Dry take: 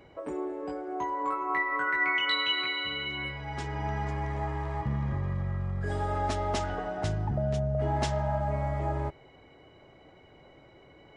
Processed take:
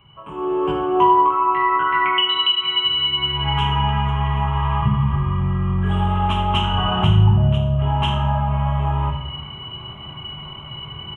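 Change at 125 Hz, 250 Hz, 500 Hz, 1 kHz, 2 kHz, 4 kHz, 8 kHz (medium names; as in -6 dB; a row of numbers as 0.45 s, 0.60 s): +13.5 dB, +12.5 dB, +7.5 dB, +13.5 dB, +3.5 dB, +15.0 dB, no reading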